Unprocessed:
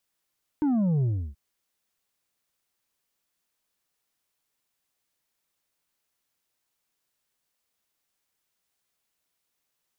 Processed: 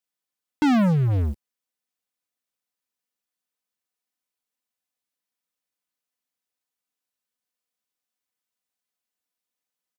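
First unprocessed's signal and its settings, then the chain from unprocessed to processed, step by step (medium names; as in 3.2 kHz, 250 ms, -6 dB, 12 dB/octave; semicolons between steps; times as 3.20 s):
sub drop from 310 Hz, over 0.73 s, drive 5 dB, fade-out 0.32 s, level -21.5 dB
high-pass 81 Hz 12 dB/octave; comb 4 ms, depth 53%; waveshaping leveller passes 5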